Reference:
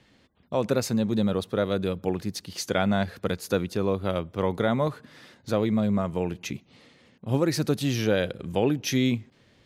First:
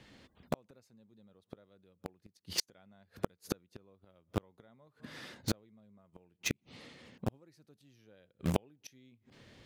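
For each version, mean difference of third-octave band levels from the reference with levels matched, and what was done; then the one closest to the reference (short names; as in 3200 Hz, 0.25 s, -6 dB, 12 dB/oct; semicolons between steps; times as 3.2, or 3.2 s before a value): 15.5 dB: flipped gate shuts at -21 dBFS, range -39 dB; in parallel at -7 dB: bit-crush 5-bit; on the sum: gain +1.5 dB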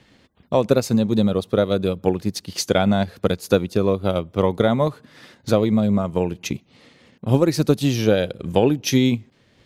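2.0 dB: dynamic EQ 1700 Hz, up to -5 dB, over -47 dBFS, Q 1.6; transient shaper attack +4 dB, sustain -4 dB; gain +5.5 dB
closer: second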